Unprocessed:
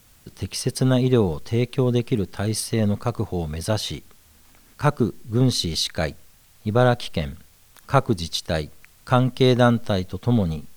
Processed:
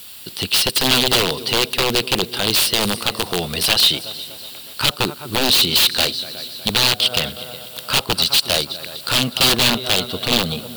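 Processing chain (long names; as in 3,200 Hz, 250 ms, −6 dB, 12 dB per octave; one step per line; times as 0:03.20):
high-pass filter 400 Hz 6 dB per octave
notch filter 6,400 Hz, Q 7.1
in parallel at +1 dB: downward compressor 5 to 1, threshold −32 dBFS, peak gain reduction 17 dB
on the sum: high-shelf EQ 8,900 Hz +11 dB
log-companded quantiser 6 bits
on a send: echo machine with several playback heads 122 ms, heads second and third, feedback 53%, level −20 dB
on the sum: wrap-around overflow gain 16.5 dB
flat-topped bell 3,500 Hz +10 dB 1 octave
level +4 dB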